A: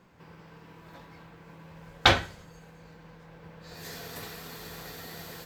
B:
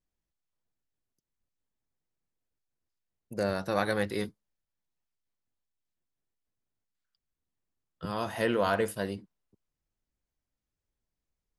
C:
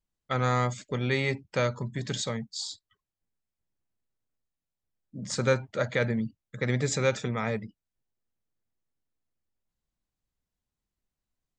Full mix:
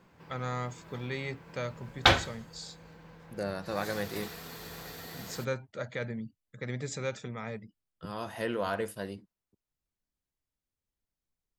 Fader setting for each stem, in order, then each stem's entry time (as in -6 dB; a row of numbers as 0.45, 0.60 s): -1.5, -5.0, -9.0 dB; 0.00, 0.00, 0.00 s